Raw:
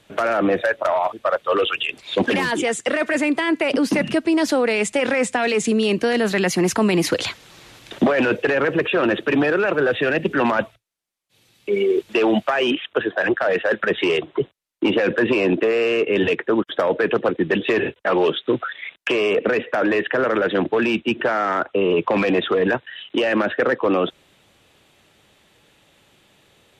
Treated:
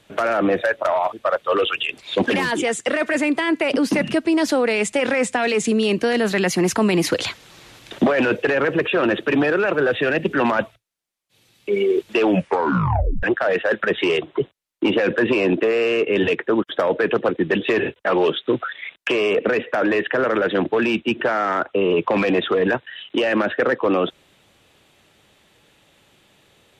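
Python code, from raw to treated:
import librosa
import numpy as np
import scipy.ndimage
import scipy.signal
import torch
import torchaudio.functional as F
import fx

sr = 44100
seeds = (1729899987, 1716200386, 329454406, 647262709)

y = fx.edit(x, sr, fx.tape_stop(start_s=12.24, length_s=0.99), tone=tone)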